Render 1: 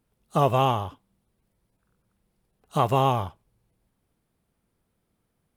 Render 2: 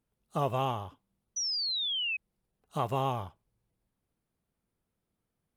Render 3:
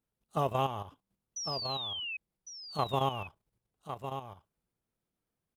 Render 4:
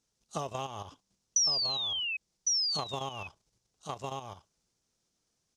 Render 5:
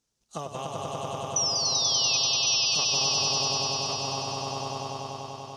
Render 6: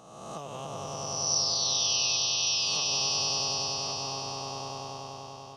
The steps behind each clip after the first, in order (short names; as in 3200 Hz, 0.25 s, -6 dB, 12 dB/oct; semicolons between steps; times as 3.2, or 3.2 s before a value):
painted sound fall, 1.36–2.17, 2500–6000 Hz -23 dBFS; gain -9 dB
low shelf 150 Hz -3 dB; level quantiser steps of 10 dB; on a send: echo 1.105 s -8.5 dB; on the sum: gain +2 dB
tone controls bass -2 dB, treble +10 dB; compressor 6:1, threshold -38 dBFS, peak gain reduction 12.5 dB; synth low-pass 6000 Hz, resonance Q 2.5; gain +4.5 dB
swelling echo 97 ms, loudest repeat 5, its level -3 dB
spectral swells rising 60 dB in 1.27 s; gain -7 dB